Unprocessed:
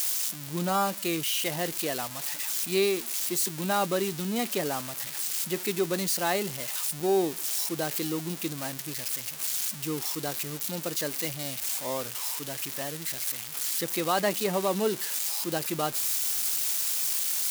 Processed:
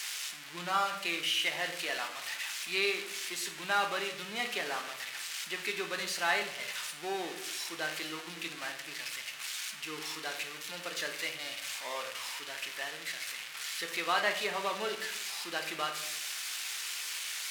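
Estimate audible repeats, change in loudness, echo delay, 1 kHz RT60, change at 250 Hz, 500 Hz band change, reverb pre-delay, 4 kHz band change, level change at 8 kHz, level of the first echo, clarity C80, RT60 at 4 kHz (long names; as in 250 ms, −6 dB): no echo audible, −6.5 dB, no echo audible, 0.70 s, −14.0 dB, −9.5 dB, 3 ms, −0.5 dB, −9.5 dB, no echo audible, 12.0 dB, 0.55 s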